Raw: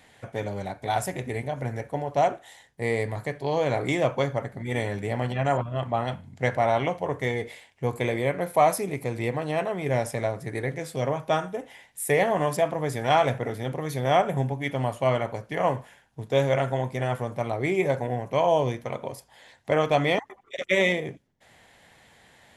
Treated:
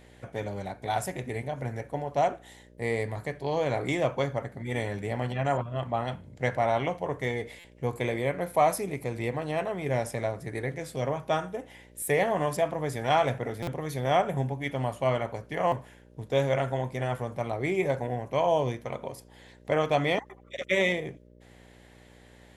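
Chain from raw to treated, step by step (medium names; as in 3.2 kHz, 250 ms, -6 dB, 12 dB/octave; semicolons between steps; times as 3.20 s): mains buzz 60 Hz, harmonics 10, -52 dBFS -3 dB/octave; buffer glitch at 7.59/12.02/13.62/15.67 s, samples 256, times 8; trim -3 dB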